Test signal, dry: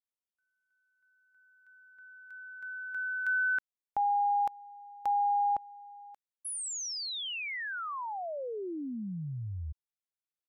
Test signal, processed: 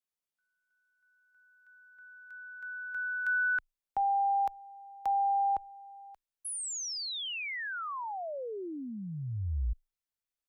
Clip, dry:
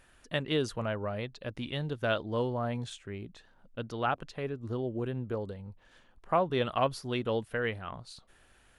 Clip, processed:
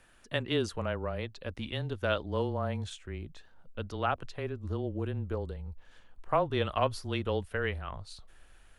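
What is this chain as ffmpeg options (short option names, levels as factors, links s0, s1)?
-af "asubboost=boost=3.5:cutoff=99,afreqshift=-20"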